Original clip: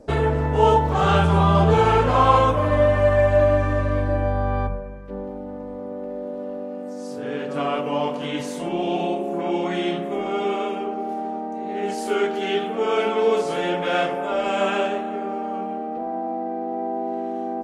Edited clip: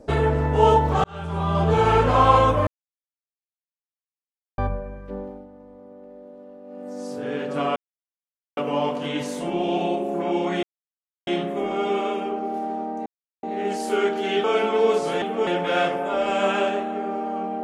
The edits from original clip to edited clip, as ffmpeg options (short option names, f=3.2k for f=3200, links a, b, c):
-filter_complex "[0:a]asplit=12[a][b][c][d][e][f][g][h][i][j][k][l];[a]atrim=end=1.04,asetpts=PTS-STARTPTS,afade=t=out:st=1.036:d=0.004:c=hsin[m];[b]atrim=start=1.04:end=2.67,asetpts=PTS-STARTPTS,afade=t=in:d=0.94,afade=t=out:st=1.626:d=0.004:c=hsin[n];[c]atrim=start=2.67:end=4.58,asetpts=PTS-STARTPTS,volume=0[o];[d]atrim=start=4.58:end=5.49,asetpts=PTS-STARTPTS,afade=t=in:d=0.004:c=hsin,afade=t=out:st=0.54:d=0.37:silence=0.237137[p];[e]atrim=start=5.49:end=6.63,asetpts=PTS-STARTPTS,volume=-12.5dB[q];[f]atrim=start=6.63:end=7.76,asetpts=PTS-STARTPTS,afade=t=in:d=0.37:silence=0.237137,afade=t=out:st=1.126:d=0.004:c=hsin,apad=pad_dur=0.81[r];[g]atrim=start=7.76:end=9.82,asetpts=PTS-STARTPTS,afade=t=in:d=0.004:c=hsin,afade=t=out:st=2.056:d=0.004:c=hsin,apad=pad_dur=0.64[s];[h]atrim=start=9.82:end=11.61,asetpts=PTS-STARTPTS,afade=t=in:d=0.004:c=hsin,afade=t=out:st=1.786:d=0.004:c=hsin,apad=pad_dur=0.37[t];[i]atrim=start=11.61:end=12.622,asetpts=PTS-STARTPTS,afade=t=in:d=0.004:c=hsin[u];[j]atrim=start=12.868:end=13.652[v];[k]atrim=start=12.618:end=12.872[w];[l]atrim=start=13.648[x];[m][n][o][p][q][r][s][t][u]concat=n=9:v=0:a=1[y];[y][v]acrossfade=d=0.004:c1=hsin:c2=hsin[z];[z][w]acrossfade=d=0.004:c1=hsin:c2=hsin[aa];[aa][x]acrossfade=d=0.004:c1=hsin:c2=hsin"